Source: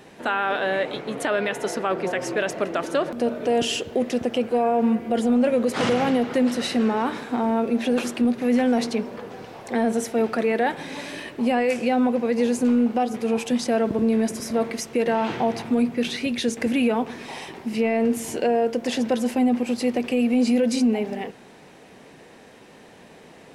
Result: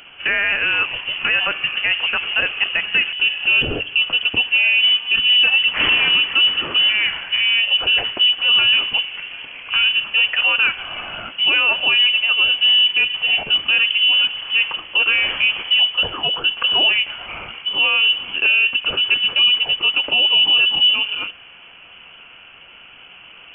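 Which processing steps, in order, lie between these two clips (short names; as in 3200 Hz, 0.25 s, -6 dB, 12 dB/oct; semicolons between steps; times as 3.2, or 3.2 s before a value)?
inverted band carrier 3200 Hz; gain +5 dB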